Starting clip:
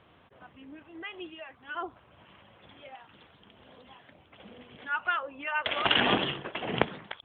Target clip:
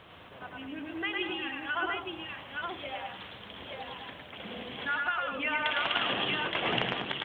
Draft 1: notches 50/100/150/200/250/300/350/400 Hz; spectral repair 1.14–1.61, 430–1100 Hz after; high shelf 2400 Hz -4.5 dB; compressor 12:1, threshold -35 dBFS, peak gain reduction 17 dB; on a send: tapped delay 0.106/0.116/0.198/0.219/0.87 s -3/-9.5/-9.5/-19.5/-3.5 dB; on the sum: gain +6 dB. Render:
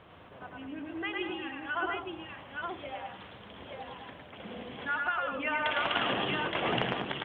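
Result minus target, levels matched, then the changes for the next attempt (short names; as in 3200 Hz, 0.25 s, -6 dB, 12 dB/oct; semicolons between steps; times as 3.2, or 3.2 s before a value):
4000 Hz band -3.0 dB
change: high shelf 2400 Hz +6.5 dB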